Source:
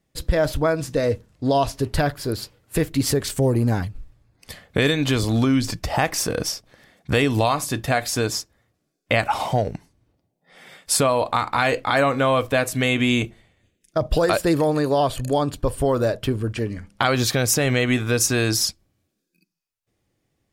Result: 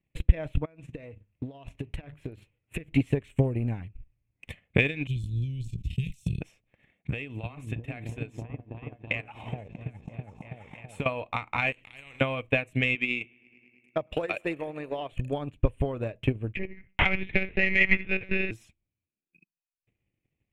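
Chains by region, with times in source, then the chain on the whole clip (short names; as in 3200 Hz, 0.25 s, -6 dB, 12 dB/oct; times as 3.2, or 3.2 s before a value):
0.65–2.9 notches 50/100/150/200 Hz + compressor 10:1, threshold -28 dBFS
5.07–6.41 elliptic band-stop 160–3900 Hz, stop band 50 dB + doubler 16 ms -9 dB + sustainer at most 21 dB/s
7.1–11.06 compressor 2:1, threshold -31 dBFS + repeats that get brighter 0.328 s, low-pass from 200 Hz, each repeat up 1 oct, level 0 dB
11.72–12.21 compressor, threshold -32 dBFS + low shelf 230 Hz +7.5 dB + spectral compressor 4:1
12.95–15.12 HPF 420 Hz 6 dB/oct + analogue delay 0.105 s, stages 2048, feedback 78%, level -20.5 dB
16.55–18.51 bell 2000 Hz +14 dB 0.27 oct + tapped delay 75/862 ms -10/-11 dB + monotone LPC vocoder at 8 kHz 190 Hz
whole clip: EQ curve 120 Hz 0 dB, 1500 Hz -10 dB, 2500 Hz +7 dB, 5000 Hz -25 dB, 7800 Hz -15 dB, 13000 Hz -23 dB; transient shaper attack +12 dB, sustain -9 dB; notch 4700 Hz, Q 6.5; gain -9 dB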